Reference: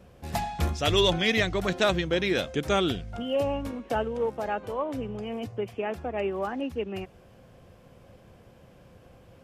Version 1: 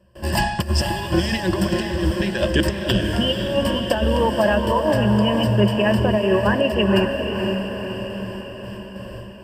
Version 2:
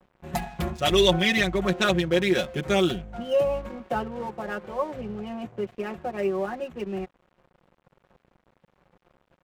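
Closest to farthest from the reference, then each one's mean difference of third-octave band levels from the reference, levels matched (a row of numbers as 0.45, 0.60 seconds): 2, 1; 5.5, 9.5 decibels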